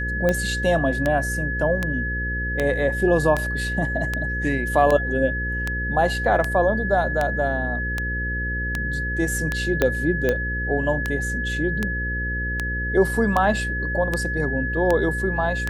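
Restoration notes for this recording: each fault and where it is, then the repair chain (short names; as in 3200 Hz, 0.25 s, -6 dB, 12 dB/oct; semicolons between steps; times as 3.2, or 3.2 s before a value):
buzz 60 Hz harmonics 9 -28 dBFS
tick 78 rpm -9 dBFS
tone 1700 Hz -26 dBFS
9.82 pop -6 dBFS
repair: de-click; de-hum 60 Hz, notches 9; notch 1700 Hz, Q 30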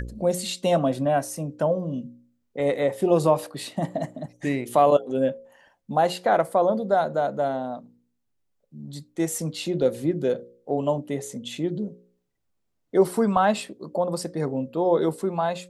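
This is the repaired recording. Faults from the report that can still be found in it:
9.82 pop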